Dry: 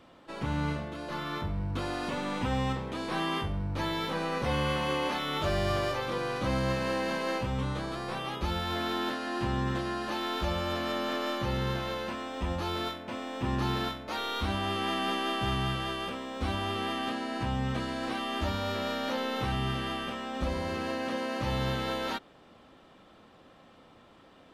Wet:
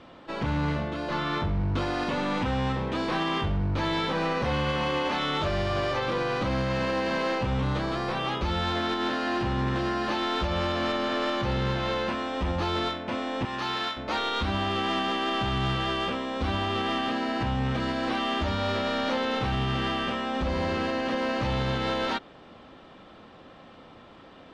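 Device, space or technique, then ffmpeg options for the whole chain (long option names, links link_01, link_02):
limiter into clipper: -filter_complex "[0:a]asettb=1/sr,asplit=3[link_01][link_02][link_03];[link_01]atrim=end=13.454[link_04];[link_02]atrim=start=13.45:end=13.97,asetpts=PTS-STARTPTS,afade=type=in:duration=0.004:curve=qsin,afade=type=out:start_time=0.516:duration=0.004:curve=qsin,highpass=frequency=1100:poles=1[link_05];[link_03]atrim=start=13.966[link_06];[link_04][link_05]acrossfade=duration=0.004:curve1=hsin:curve2=qsin[link_07];[link_07][link_06]acrossfade=duration=0.004:curve1=qsin:curve2=hsin,alimiter=limit=-24dB:level=0:latency=1:release=115,asoftclip=type=hard:threshold=-29.5dB,lowpass=5200,volume=7dB"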